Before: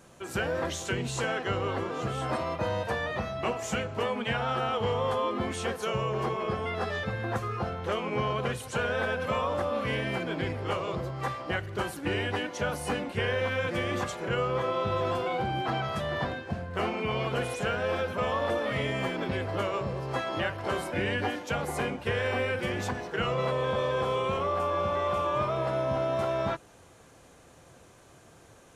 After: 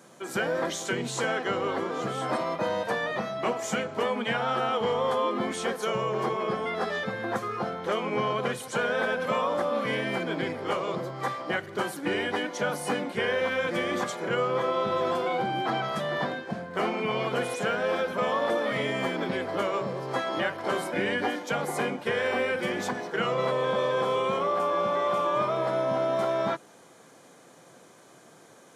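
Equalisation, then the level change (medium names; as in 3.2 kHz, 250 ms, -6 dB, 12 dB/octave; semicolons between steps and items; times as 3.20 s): high-pass 160 Hz 24 dB/octave; band-stop 2.7 kHz, Q 9.4; +2.5 dB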